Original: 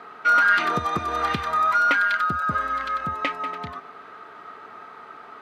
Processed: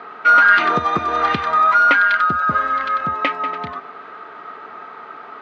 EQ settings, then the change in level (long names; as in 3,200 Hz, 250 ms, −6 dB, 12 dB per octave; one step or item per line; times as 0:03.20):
high-pass filter 190 Hz 6 dB per octave
high-frequency loss of the air 140 metres
+7.5 dB